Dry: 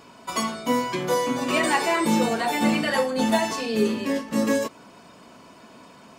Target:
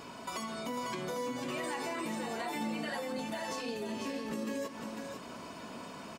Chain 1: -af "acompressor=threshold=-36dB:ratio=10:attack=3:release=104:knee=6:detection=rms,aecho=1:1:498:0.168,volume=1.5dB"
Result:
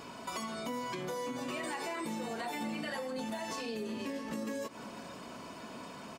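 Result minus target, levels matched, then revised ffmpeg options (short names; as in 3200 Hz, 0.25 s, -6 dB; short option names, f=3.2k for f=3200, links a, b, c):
echo-to-direct -10 dB
-af "acompressor=threshold=-36dB:ratio=10:attack=3:release=104:knee=6:detection=rms,aecho=1:1:498:0.531,volume=1.5dB"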